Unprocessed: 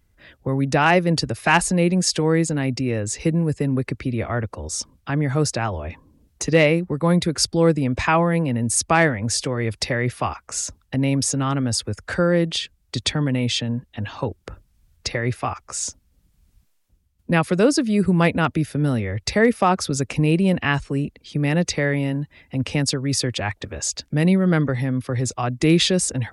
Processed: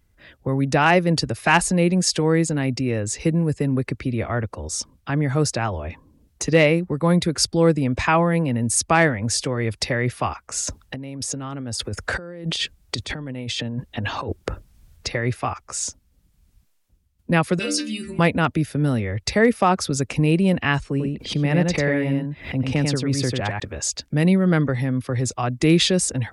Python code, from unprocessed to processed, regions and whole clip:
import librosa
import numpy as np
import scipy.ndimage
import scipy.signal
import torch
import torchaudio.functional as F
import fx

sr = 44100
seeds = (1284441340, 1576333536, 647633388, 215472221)

y = fx.chain(x, sr, fx.peak_eq(hz=470.0, db=3.0, octaves=1.8),
    fx.over_compress(threshold_db=-29.0, ratio=-1.0), at=(10.67, 15.07))
y = fx.chain(y, sr, fx.high_shelf_res(hz=1600.0, db=13.5, q=1.5),
    fx.stiff_resonator(f0_hz=70.0, decay_s=0.65, stiffness=0.008), at=(17.59, 18.19))
y = fx.chain(y, sr, fx.high_shelf(hz=3300.0, db=-8.5),
    fx.echo_single(ms=95, db=-3.5),
    fx.pre_swell(db_per_s=130.0), at=(20.9, 23.6))